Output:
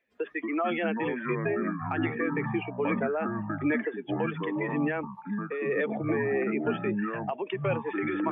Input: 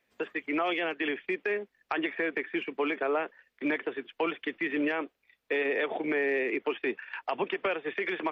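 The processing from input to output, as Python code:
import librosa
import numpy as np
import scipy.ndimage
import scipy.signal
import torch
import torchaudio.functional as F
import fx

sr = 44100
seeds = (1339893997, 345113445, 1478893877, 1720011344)

y = fx.spec_expand(x, sr, power=1.6)
y = fx.echo_pitch(y, sr, ms=149, semitones=-6, count=3, db_per_echo=-3.0)
y = fx.am_noise(y, sr, seeds[0], hz=5.7, depth_pct=65)
y = y * librosa.db_to_amplitude(3.5)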